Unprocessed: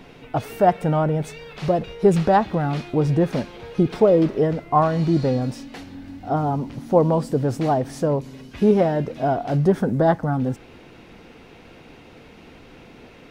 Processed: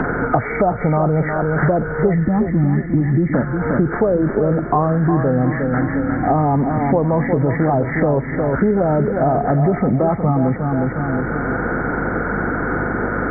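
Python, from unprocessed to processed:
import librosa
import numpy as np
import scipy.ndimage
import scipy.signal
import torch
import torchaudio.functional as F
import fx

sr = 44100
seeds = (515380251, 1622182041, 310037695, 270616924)

p1 = fx.freq_compress(x, sr, knee_hz=1200.0, ratio=4.0)
p2 = fx.spec_box(p1, sr, start_s=2.13, length_s=1.21, low_hz=360.0, high_hz=1700.0, gain_db=-19)
p3 = fx.over_compress(p2, sr, threshold_db=-23.0, ratio=-1.0)
p4 = p2 + (p3 * librosa.db_to_amplitude(1.0))
p5 = fx.add_hum(p4, sr, base_hz=50, snr_db=25)
p6 = fx.echo_feedback(p5, sr, ms=359, feedback_pct=37, wet_db=-8.5)
p7 = fx.band_squash(p6, sr, depth_pct=100)
y = p7 * librosa.db_to_amplitude(-1.5)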